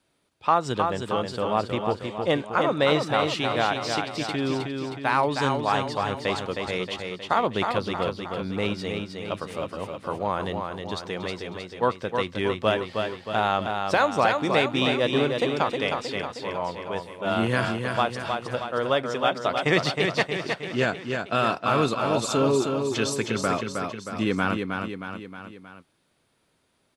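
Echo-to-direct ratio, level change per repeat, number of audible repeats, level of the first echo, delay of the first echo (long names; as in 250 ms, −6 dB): −3.5 dB, −5.0 dB, 4, −5.0 dB, 314 ms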